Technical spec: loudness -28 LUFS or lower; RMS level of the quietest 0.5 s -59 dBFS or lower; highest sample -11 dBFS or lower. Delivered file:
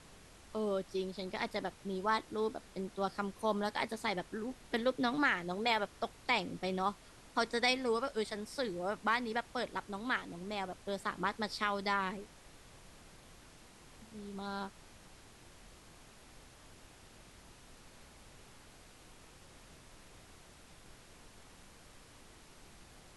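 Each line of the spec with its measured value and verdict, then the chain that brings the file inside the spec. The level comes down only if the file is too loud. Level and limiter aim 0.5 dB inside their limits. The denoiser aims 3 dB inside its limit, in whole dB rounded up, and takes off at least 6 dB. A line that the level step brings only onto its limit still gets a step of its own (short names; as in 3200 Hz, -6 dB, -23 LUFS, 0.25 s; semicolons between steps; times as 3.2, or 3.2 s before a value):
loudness -36.5 LUFS: OK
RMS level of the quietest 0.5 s -58 dBFS: fail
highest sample -17.5 dBFS: OK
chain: denoiser 6 dB, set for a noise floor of -58 dBFS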